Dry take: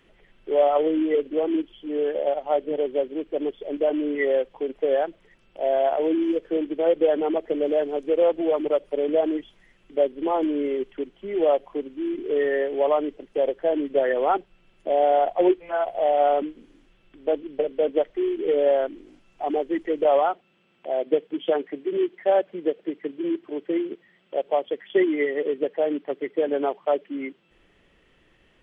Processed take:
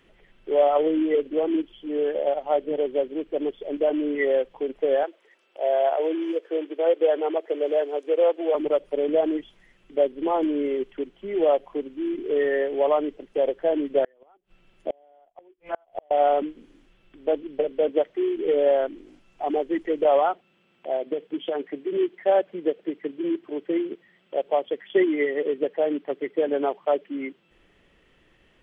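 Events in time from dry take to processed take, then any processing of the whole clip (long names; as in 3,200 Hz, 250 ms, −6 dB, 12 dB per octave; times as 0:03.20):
0:05.03–0:08.55: high-pass filter 360 Hz 24 dB per octave
0:14.04–0:16.11: gate with flip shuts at −16 dBFS, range −37 dB
0:17.89–0:18.36: high-pass filter 79 Hz
0:20.96–0:21.95: downward compressor, threshold −22 dBFS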